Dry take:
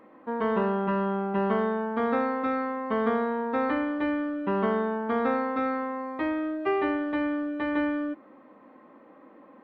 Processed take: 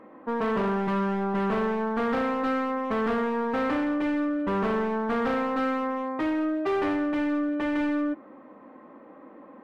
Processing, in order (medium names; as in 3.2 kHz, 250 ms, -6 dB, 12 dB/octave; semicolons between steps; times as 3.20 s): overload inside the chain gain 27.5 dB; treble shelf 3.5 kHz -10.5 dB; trim +4.5 dB